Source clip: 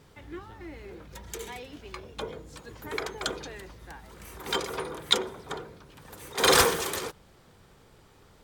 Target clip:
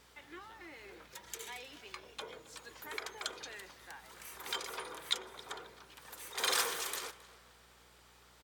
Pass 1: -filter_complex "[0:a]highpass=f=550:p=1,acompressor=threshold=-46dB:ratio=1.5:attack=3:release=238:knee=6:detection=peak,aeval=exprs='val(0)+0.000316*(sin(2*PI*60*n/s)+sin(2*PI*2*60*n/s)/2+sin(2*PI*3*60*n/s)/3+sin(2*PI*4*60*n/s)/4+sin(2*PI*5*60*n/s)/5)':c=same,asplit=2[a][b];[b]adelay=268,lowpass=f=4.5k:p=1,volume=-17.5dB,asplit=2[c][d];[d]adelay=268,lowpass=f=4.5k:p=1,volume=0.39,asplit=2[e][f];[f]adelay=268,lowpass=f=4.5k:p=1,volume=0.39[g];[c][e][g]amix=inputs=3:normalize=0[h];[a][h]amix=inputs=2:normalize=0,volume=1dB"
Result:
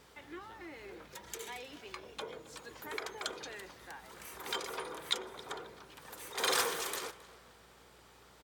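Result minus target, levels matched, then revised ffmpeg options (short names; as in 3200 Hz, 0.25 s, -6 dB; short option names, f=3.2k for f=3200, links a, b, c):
500 Hz band +4.5 dB
-filter_complex "[0:a]highpass=f=1.3k:p=1,acompressor=threshold=-46dB:ratio=1.5:attack=3:release=238:knee=6:detection=peak,aeval=exprs='val(0)+0.000316*(sin(2*PI*60*n/s)+sin(2*PI*2*60*n/s)/2+sin(2*PI*3*60*n/s)/3+sin(2*PI*4*60*n/s)/4+sin(2*PI*5*60*n/s)/5)':c=same,asplit=2[a][b];[b]adelay=268,lowpass=f=4.5k:p=1,volume=-17.5dB,asplit=2[c][d];[d]adelay=268,lowpass=f=4.5k:p=1,volume=0.39,asplit=2[e][f];[f]adelay=268,lowpass=f=4.5k:p=1,volume=0.39[g];[c][e][g]amix=inputs=3:normalize=0[h];[a][h]amix=inputs=2:normalize=0,volume=1dB"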